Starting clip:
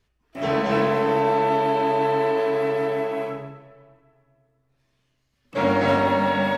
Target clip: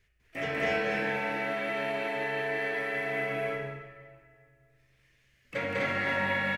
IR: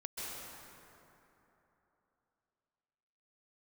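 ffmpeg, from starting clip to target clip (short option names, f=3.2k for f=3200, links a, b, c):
-filter_complex "[0:a]equalizer=f=250:t=o:w=1:g=-8,equalizer=f=1k:t=o:w=1:g=-11,equalizer=f=2k:t=o:w=1:g=11,equalizer=f=4k:t=o:w=1:g=-5,acompressor=threshold=-30dB:ratio=10,asplit=2[a][b];[b]aecho=0:1:198.3|250.7:0.891|0.891[c];[a][c]amix=inputs=2:normalize=0"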